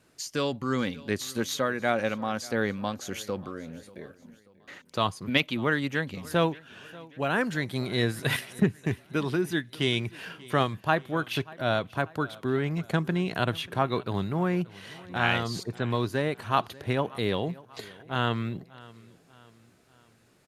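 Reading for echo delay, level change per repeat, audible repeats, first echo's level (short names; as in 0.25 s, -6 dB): 0.587 s, -6.5 dB, 3, -21.5 dB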